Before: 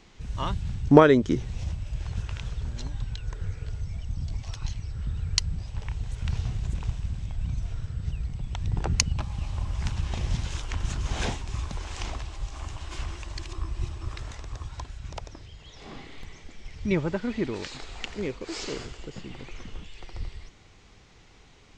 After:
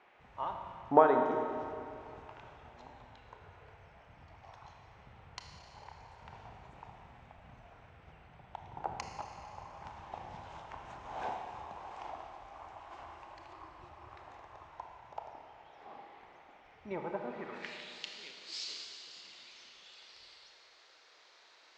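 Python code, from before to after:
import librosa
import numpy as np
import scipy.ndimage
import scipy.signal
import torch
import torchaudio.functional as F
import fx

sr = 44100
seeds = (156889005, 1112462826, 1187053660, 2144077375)

y = fx.filter_sweep_bandpass(x, sr, from_hz=810.0, to_hz=4300.0, start_s=17.29, end_s=17.97, q=2.8)
y = fx.dmg_noise_band(y, sr, seeds[0], low_hz=360.0, high_hz=2500.0, level_db=-67.0)
y = fx.rev_schroeder(y, sr, rt60_s=2.5, comb_ms=25, drr_db=3.0)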